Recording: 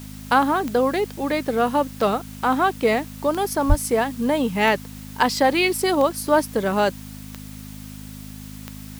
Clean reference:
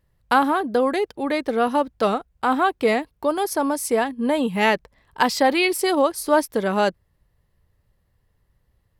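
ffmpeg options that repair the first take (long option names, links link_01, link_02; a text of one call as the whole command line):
ffmpeg -i in.wav -filter_complex "[0:a]adeclick=threshold=4,bandreject=frequency=51.9:width_type=h:width=4,bandreject=frequency=103.8:width_type=h:width=4,bandreject=frequency=155.7:width_type=h:width=4,bandreject=frequency=207.6:width_type=h:width=4,bandreject=frequency=259.5:width_type=h:width=4,asplit=3[link_01][link_02][link_03];[link_01]afade=type=out:start_time=3.68:duration=0.02[link_04];[link_02]highpass=frequency=140:width=0.5412,highpass=frequency=140:width=1.3066,afade=type=in:start_time=3.68:duration=0.02,afade=type=out:start_time=3.8:duration=0.02[link_05];[link_03]afade=type=in:start_time=3.8:duration=0.02[link_06];[link_04][link_05][link_06]amix=inputs=3:normalize=0,afwtdn=0.0056" out.wav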